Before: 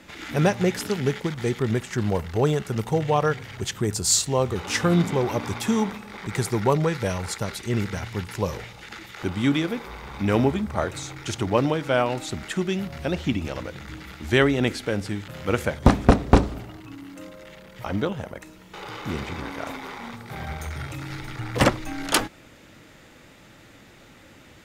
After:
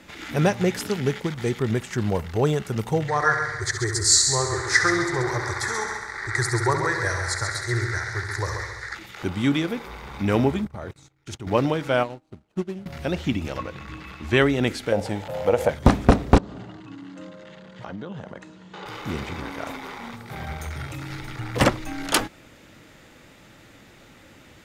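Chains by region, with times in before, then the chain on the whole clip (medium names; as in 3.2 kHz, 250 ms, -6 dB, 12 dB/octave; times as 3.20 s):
3.08–8.95 s: FFT filter 130 Hz 0 dB, 210 Hz -28 dB, 350 Hz 0 dB, 510 Hz -8 dB, 1 kHz 0 dB, 1.9 kHz +13 dB, 2.8 kHz -21 dB, 4.1 kHz +5 dB, 9.9 kHz +1 dB, 15 kHz -22 dB + multi-head delay 67 ms, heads first and second, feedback 50%, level -9 dB
10.65–11.47 s: gate -34 dBFS, range -28 dB + bass shelf 360 Hz +5.5 dB + level held to a coarse grid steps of 17 dB
12.03–12.86 s: median filter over 25 samples + low-pass 11 kHz + upward expansion 2.5:1, over -39 dBFS
13.58–14.38 s: treble shelf 7.3 kHz -11 dB + small resonant body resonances 1.1/2.6 kHz, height 17 dB, ringing for 85 ms
14.92–15.69 s: high-order bell 660 Hz +14.5 dB 1.2 oct + compression 2.5:1, threshold -16 dBFS
16.38–18.86 s: band-stop 1.3 kHz, Q 6.9 + compression 12:1, threshold -31 dBFS + cabinet simulation 110–6700 Hz, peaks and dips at 180 Hz +6 dB, 1.3 kHz +6 dB, 2.3 kHz -6 dB, 5.5 kHz -6 dB
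whole clip: none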